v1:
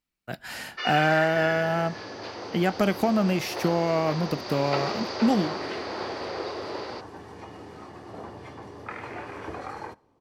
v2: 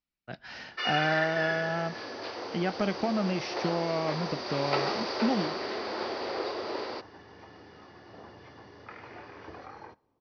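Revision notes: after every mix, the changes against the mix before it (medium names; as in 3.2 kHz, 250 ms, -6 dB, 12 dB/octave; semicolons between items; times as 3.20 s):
speech -6.0 dB; second sound -9.0 dB; master: add steep low-pass 6 kHz 96 dB/octave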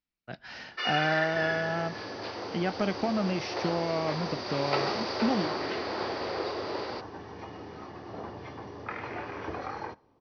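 second sound +9.0 dB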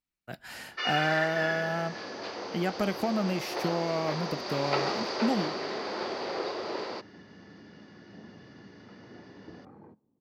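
second sound: add band-pass filter 200 Hz, Q 2.5; master: remove steep low-pass 6 kHz 96 dB/octave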